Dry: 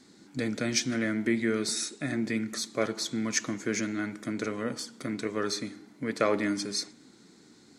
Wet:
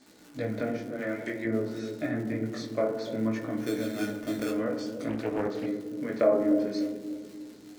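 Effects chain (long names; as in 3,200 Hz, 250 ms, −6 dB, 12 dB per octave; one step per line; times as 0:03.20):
0:00.78–0:01.45: RIAA equalisation recording
treble cut that deepens with the level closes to 860 Hz, closed at −24.5 dBFS
parametric band 630 Hz +10.5 dB 0.54 octaves
0:03.57–0:04.51: sample-rate reduction 3,900 Hz, jitter 0%
surface crackle 180 per second −37 dBFS
chorus effect 0.55 Hz, delay 15.5 ms, depth 7.1 ms
bucket-brigade delay 295 ms, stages 1,024, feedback 47%, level −6.5 dB
feedback delay network reverb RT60 0.83 s, low-frequency decay 1.2×, high-frequency decay 0.4×, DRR 4 dB
0:05.09–0:05.66: highs frequency-modulated by the lows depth 0.47 ms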